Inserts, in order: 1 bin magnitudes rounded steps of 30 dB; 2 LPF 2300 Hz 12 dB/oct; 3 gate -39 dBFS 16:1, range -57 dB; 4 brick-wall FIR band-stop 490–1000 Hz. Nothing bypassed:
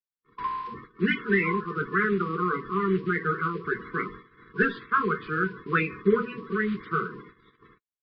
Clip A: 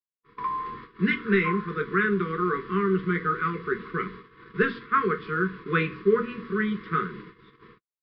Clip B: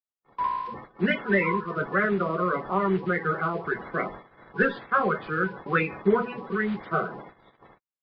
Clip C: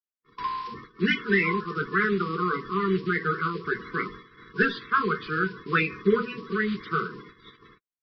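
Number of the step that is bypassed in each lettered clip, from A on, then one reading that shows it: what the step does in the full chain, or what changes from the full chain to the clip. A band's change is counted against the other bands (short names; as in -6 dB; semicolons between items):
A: 1, 2 kHz band -2.0 dB; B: 4, 500 Hz band +1.5 dB; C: 2, 4 kHz band +7.0 dB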